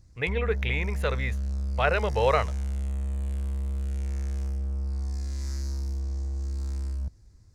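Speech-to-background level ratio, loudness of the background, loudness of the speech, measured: 4.0 dB, -32.0 LUFS, -28.0 LUFS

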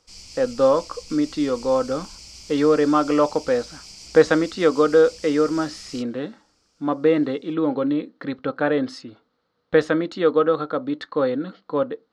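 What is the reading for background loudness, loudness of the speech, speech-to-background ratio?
-40.0 LUFS, -21.5 LUFS, 18.5 dB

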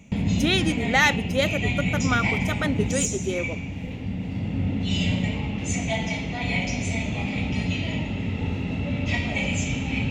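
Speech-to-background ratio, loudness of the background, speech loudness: 1.0 dB, -26.5 LUFS, -25.5 LUFS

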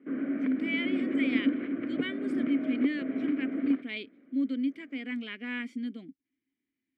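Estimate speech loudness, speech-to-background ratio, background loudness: -34.0 LUFS, -2.0 dB, -32.0 LUFS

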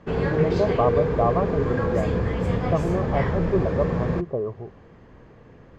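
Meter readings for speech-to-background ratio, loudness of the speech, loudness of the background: -1.5 dB, -26.5 LUFS, -25.0 LUFS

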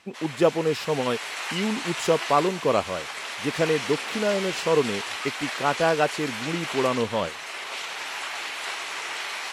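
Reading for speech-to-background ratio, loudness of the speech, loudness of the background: 5.5 dB, -26.0 LUFS, -31.5 LUFS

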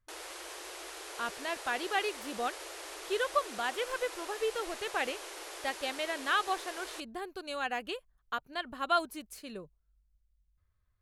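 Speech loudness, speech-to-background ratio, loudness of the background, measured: -35.0 LUFS, 8.0 dB, -43.0 LUFS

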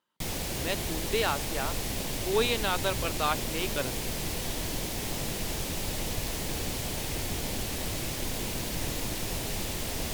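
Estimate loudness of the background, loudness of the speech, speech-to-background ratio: -32.5 LUFS, -31.5 LUFS, 1.0 dB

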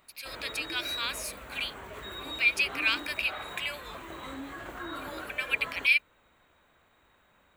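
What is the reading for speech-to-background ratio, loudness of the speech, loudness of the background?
11.0 dB, -29.0 LUFS, -40.0 LUFS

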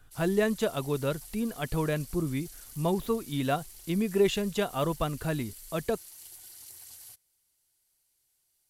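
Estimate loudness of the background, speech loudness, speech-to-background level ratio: -46.0 LUFS, -30.5 LUFS, 15.5 dB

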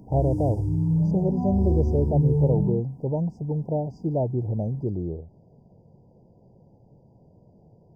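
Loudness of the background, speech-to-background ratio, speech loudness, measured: -25.0 LUFS, -2.0 dB, -27.0 LUFS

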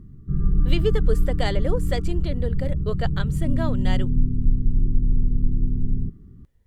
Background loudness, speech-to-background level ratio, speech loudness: -25.5 LUFS, -5.0 dB, -30.5 LUFS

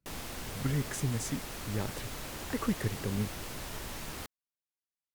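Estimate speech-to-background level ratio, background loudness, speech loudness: 5.0 dB, -41.0 LUFS, -36.0 LUFS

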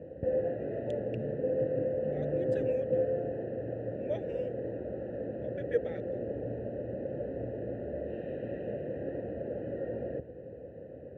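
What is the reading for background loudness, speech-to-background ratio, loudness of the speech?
-35.0 LUFS, -5.0 dB, -40.0 LUFS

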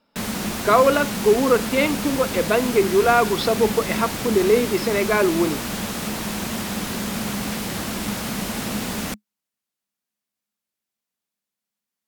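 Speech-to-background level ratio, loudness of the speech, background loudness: 6.5 dB, -20.0 LUFS, -26.5 LUFS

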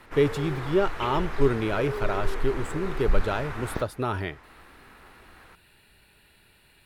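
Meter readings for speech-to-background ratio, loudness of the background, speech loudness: 6.5 dB, -34.5 LUFS, -28.0 LUFS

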